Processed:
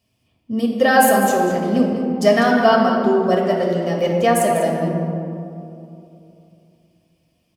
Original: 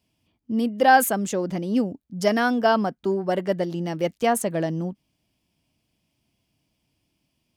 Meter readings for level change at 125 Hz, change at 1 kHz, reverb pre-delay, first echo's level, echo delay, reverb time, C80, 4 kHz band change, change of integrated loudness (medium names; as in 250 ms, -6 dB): +6.5 dB, +5.0 dB, 4 ms, -10.5 dB, 197 ms, 2.8 s, 2.5 dB, +5.5 dB, +6.0 dB